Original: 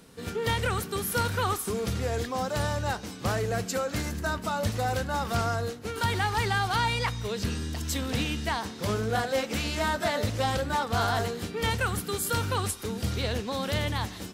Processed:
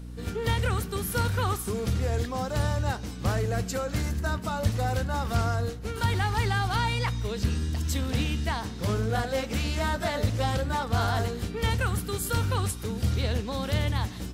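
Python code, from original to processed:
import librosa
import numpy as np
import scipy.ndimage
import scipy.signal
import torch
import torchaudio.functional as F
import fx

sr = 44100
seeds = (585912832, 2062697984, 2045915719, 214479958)

y = fx.low_shelf(x, sr, hz=130.0, db=10.0)
y = fx.add_hum(y, sr, base_hz=60, snr_db=12)
y = y * 10.0 ** (-2.0 / 20.0)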